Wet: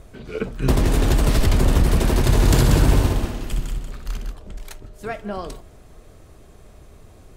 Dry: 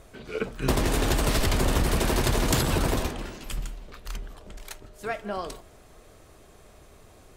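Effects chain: bass shelf 310 Hz +9 dB; 2.23–4.32 s: multi-head delay 62 ms, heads first and third, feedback 46%, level -6 dB

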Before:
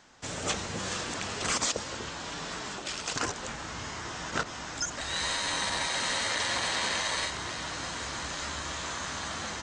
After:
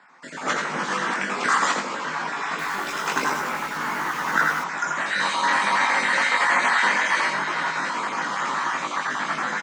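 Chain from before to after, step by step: random holes in the spectrogram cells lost 29%; Chebyshev high-pass 160 Hz, order 5; treble shelf 2.8 kHz -9.5 dB; doubling 20 ms -4 dB; delay 84 ms -6.5 dB; reverberation RT60 2.6 s, pre-delay 6 ms, DRR 12.5 dB; level rider gain up to 6 dB; high-order bell 1.4 kHz +9 dB; 2.49–4.64 s: bit-crushed delay 97 ms, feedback 35%, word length 6-bit, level -5 dB

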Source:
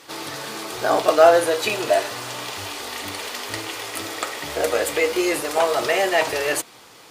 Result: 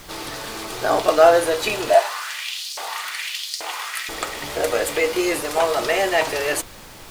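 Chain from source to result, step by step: added noise pink -42 dBFS; 1.94–4.09 s: LFO high-pass saw up 1.2 Hz 620–5500 Hz

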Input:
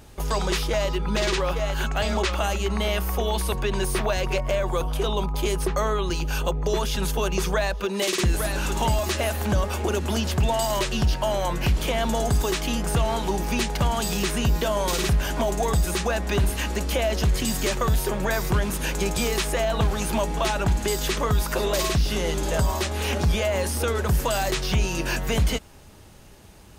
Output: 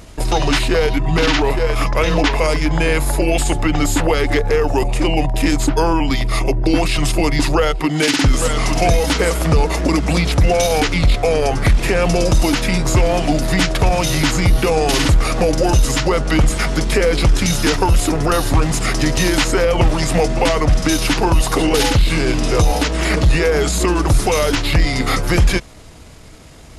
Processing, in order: pitch shift -4.5 st; trim +9 dB

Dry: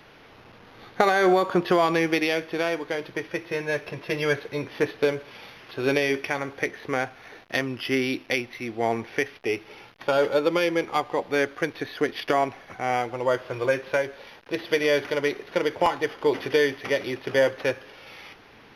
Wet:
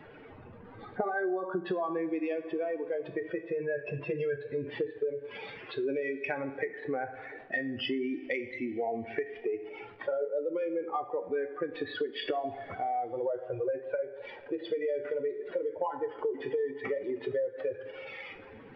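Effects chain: spectral contrast enhancement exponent 2.4; two-slope reverb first 0.48 s, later 3.3 s, from -21 dB, DRR 7.5 dB; compression 5:1, threshold -30 dBFS, peak gain reduction 13.5 dB

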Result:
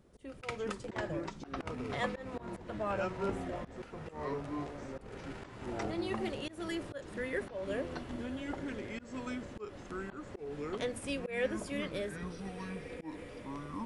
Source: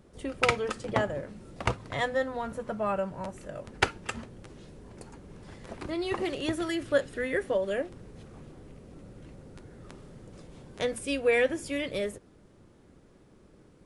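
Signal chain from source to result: echo that smears into a reverb 1602 ms, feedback 56%, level -14 dB; ever faster or slower copies 335 ms, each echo -5 st, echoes 3; slow attack 192 ms; trim -6.5 dB

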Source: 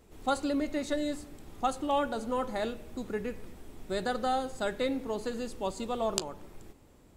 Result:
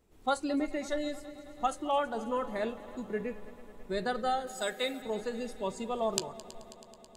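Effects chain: spectral noise reduction 10 dB; 4.47–5.02 s: RIAA curve recording; multi-head delay 108 ms, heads second and third, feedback 69%, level -19 dB

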